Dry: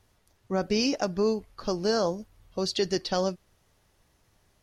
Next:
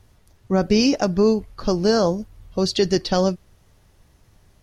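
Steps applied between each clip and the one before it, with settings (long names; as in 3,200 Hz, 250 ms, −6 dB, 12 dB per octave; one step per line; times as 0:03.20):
low-shelf EQ 240 Hz +8.5 dB
level +5.5 dB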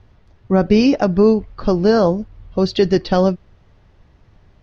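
high-frequency loss of the air 220 metres
level +5 dB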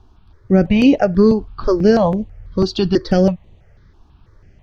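step-sequenced phaser 6.1 Hz 540–5,200 Hz
level +3.5 dB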